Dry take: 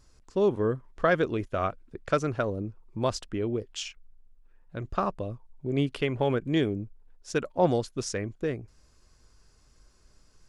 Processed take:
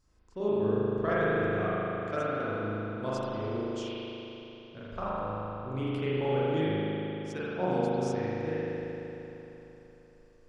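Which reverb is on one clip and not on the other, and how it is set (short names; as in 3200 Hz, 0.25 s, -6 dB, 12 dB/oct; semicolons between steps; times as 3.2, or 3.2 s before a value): spring tank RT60 3.6 s, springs 38 ms, chirp 70 ms, DRR -10 dB; gain -12.5 dB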